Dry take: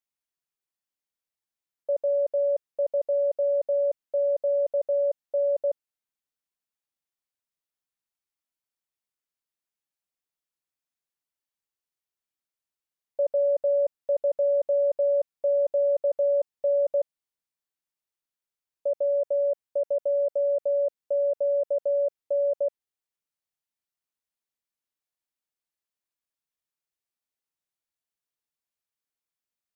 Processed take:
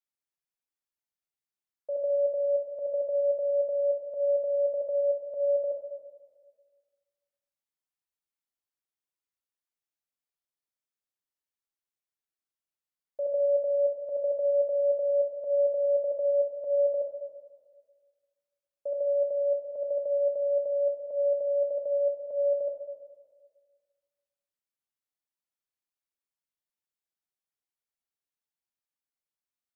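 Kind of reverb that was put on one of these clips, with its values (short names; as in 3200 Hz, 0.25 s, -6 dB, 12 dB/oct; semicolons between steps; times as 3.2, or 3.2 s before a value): plate-style reverb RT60 1.6 s, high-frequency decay 0.45×, DRR 2 dB; gain -7 dB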